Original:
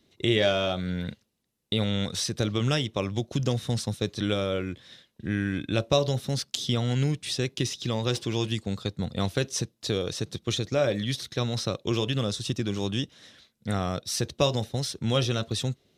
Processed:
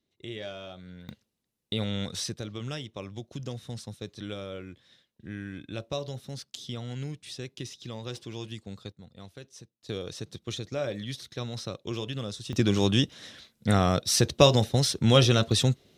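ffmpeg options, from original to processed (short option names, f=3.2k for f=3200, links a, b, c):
-af "asetnsamples=n=441:p=0,asendcmd='1.09 volume volume -4dB;2.34 volume volume -10.5dB;8.92 volume volume -19dB;9.89 volume volume -7dB;12.53 volume volume 5.5dB',volume=-15.5dB"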